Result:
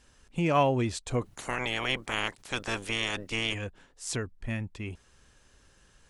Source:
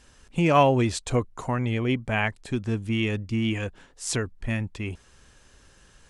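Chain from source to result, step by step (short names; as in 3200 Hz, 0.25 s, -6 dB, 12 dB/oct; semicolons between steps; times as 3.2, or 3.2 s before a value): 1.21–3.53 spectral limiter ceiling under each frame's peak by 29 dB; gain -5.5 dB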